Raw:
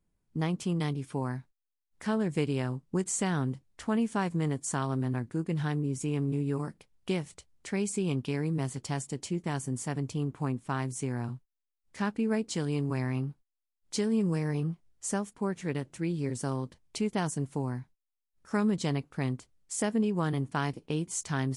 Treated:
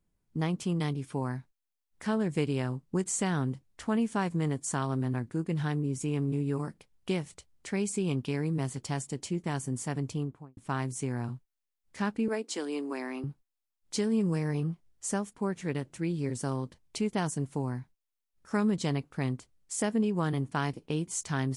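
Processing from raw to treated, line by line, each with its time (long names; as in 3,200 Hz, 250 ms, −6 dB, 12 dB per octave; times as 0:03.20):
0:10.10–0:10.57: fade out and dull
0:12.28–0:13.24: Butterworth high-pass 260 Hz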